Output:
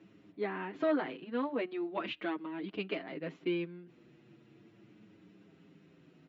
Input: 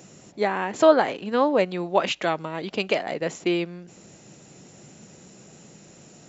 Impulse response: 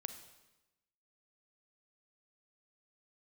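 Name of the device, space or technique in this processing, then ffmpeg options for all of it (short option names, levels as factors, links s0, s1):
barber-pole flanger into a guitar amplifier: -filter_complex "[0:a]asplit=2[s0][s1];[s1]adelay=6.9,afreqshift=-0.39[s2];[s0][s2]amix=inputs=2:normalize=1,asoftclip=type=tanh:threshold=0.316,highpass=78,equalizer=f=310:t=q:w=4:g=9,equalizer=f=560:t=q:w=4:g=-7,equalizer=f=800:t=q:w=4:g=-7,lowpass=f=3400:w=0.5412,lowpass=f=3400:w=1.3066,volume=0.376"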